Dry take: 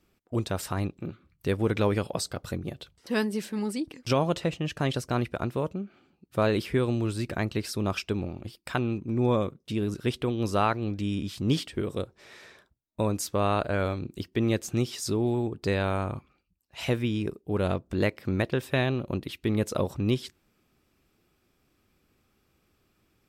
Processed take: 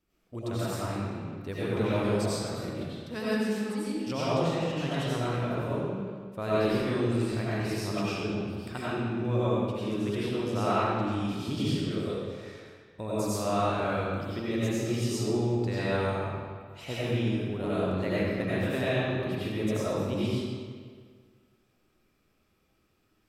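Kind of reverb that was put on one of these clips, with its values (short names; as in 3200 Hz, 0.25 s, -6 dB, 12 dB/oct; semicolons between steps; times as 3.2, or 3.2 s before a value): digital reverb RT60 1.8 s, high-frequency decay 0.8×, pre-delay 55 ms, DRR -10 dB; gain -11 dB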